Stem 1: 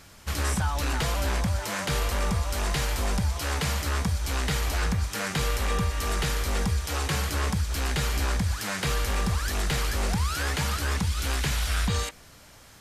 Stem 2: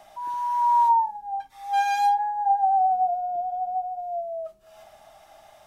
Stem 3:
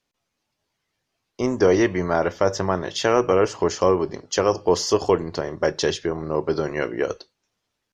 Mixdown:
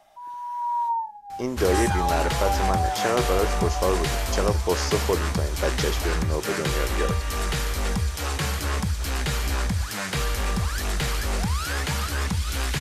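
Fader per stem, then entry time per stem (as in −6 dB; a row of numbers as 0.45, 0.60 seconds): +1.0, −6.5, −5.5 decibels; 1.30, 0.00, 0.00 seconds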